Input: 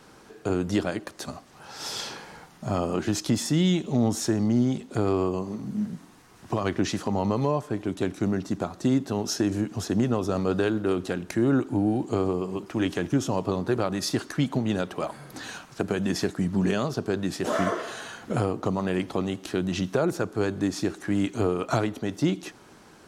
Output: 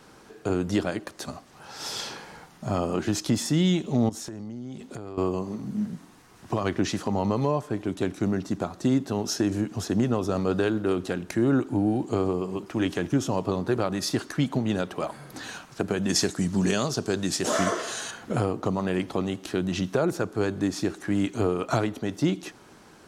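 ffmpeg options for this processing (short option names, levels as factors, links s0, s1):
-filter_complex "[0:a]asettb=1/sr,asplit=3[s0][s1][s2];[s0]atrim=end=4.094[s3];[s1]atrim=start=4.09:end=5.18,asetpts=PTS-STARTPTS,afade=t=in:d=0.004:c=qsin,afade=t=out:st=1.086:d=0.004:c=qsin,acompressor=threshold=0.0224:ratio=12:attack=3.2:release=140:knee=1:detection=peak[s4];[s2]atrim=start=5.176[s5];[s3][s4]acrossfade=d=0.004:c1=hsin:c2=qsin[s6];[s6][s5]acrossfade=d=0.004:c1=qsin:c2=hsin,asettb=1/sr,asplit=3[s7][s8][s9];[s7]atrim=end=16.094[s10];[s8]atrim=start=16.09:end=18.11,asetpts=PTS-STARTPTS,afade=t=in:d=0.004:c=qsin,afade=t=out:st=2.016:d=0.004:c=qsin,equalizer=f=7000:t=o:w=1.7:g=11.5[s11];[s9]atrim=start=18.106[s12];[s10][s11]acrossfade=d=0.004:c1=hsin:c2=qsin[s13];[s13][s12]acrossfade=d=0.004:c1=qsin:c2=hsin"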